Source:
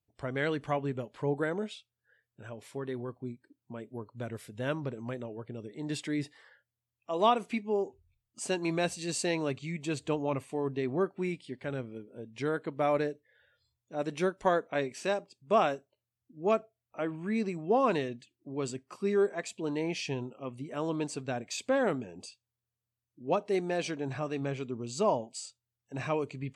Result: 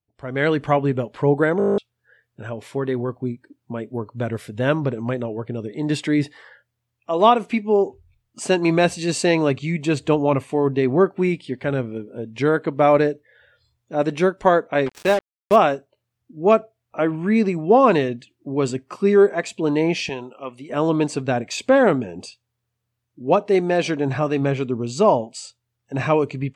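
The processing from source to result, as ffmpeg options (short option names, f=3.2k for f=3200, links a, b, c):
-filter_complex "[0:a]asettb=1/sr,asplit=3[a][b][c];[a]atrim=end=14.864[d];[b]atrim=start=14.86:end=15.56,asetpts=PTS-STARTPTS,afade=t=in:d=0.004:c=qsin,afade=t=out:st=0.696:d=0.004:c=qsin,acrusher=bits=5:mix=0:aa=0.5[e];[c]atrim=start=15.556[f];[d][e]acrossfade=d=0.004:c1=hsin:c2=qsin[g];[g][f]acrossfade=d=0.004:c1=qsin:c2=hsin,asettb=1/sr,asplit=3[h][i][j];[h]atrim=end=20.094[k];[i]atrim=start=20.09:end=20.7,asetpts=PTS-STARTPTS,afade=t=in:d=0.004:c=qsin,afade=t=out:st=0.606:d=0.004:c=qsin,highpass=f=840:p=1[l];[j]atrim=start=20.696[m];[k][l]acrossfade=d=0.004:c1=hsin:c2=qsin[n];[n][m]acrossfade=d=0.004:c1=qsin:c2=hsin,asplit=11[o][p][q][r][s][t][u][v][w][x][y];[o]atrim=end=1.602[z];[p]atrim=start=1.578:end=1.602[aa];[q]atrim=start=1.578:end=1.602[ab];[r]atrim=start=1.578:end=1.602[ac];[s]atrim=start=1.578:end=1.602[ad];[t]atrim=start=1.578:end=1.602[ae];[u]atrim=start=1.578:end=1.602[af];[v]atrim=start=1.578:end=1.602[ag];[w]atrim=start=1.578:end=1.602[ah];[x]atrim=start=1.578:end=1.602[ai];[y]atrim=start=1.778[aj];[z][aa]acrossfade=d=0.004:c1=hsin:c2=hsin[ak];[ak][ab]acrossfade=d=0.004:c1=hsin:c2=hsin[al];[al][ac]acrossfade=d=0.004:c1=hsin:c2=hsin[am];[am][ad]acrossfade=d=0.004:c1=hsin:c2=hsin[an];[an][ae]acrossfade=d=0.004:c1=hsin:c2=hsin[ao];[ao][af]acrossfade=d=0.004:c1=hsin:c2=hsin[ap];[ap][ag]acrossfade=d=0.004:c1=hsin:c2=hsin[aq];[aq][ah]acrossfade=d=0.004:c1=hsin:c2=hsin[ar];[ar][ai]acrossfade=d=0.004:c1=hsin:c2=hsin[as];[as][aj]acrossfade=d=0.004:c1=hsin:c2=hsin,highshelf=f=4.8k:g=-9,dynaudnorm=f=230:g=3:m=13.5dB"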